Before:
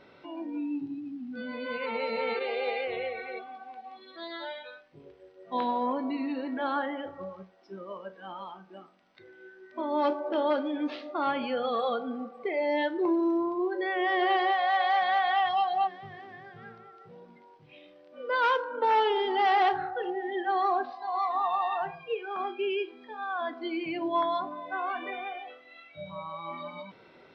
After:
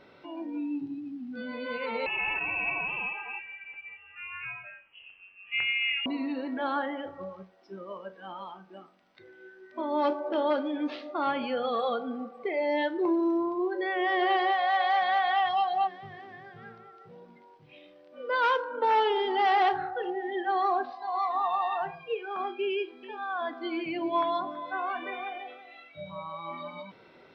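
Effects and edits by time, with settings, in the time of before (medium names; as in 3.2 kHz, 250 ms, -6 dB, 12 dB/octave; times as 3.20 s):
2.06–6.06 s: frequency inversion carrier 3.1 kHz
22.70–26.00 s: delay 328 ms -15 dB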